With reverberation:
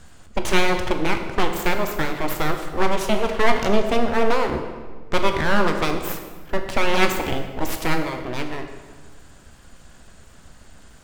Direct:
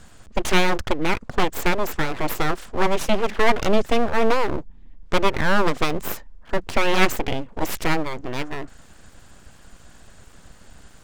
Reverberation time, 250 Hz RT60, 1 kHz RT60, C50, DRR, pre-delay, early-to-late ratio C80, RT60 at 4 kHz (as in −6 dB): 1.4 s, 1.8 s, 1.4 s, 7.0 dB, 5.0 dB, 13 ms, 8.5 dB, 1.1 s